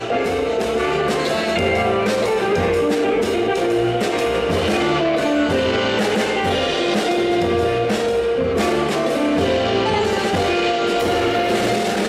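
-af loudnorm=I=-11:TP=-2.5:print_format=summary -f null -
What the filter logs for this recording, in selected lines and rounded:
Input Integrated:    -18.5 LUFS
Input True Peak:      -7.1 dBTP
Input LRA:             0.3 LU
Input Threshold:     -28.5 LUFS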